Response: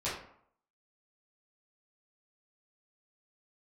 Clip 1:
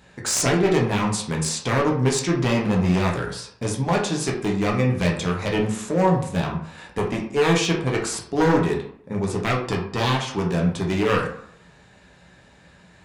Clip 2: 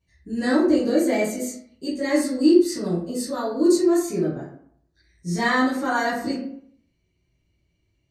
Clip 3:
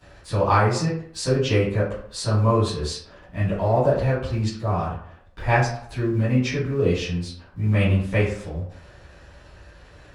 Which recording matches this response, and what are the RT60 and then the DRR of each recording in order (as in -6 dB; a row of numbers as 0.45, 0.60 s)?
2; 0.65, 0.65, 0.65 s; -2.0, -11.0, -15.5 dB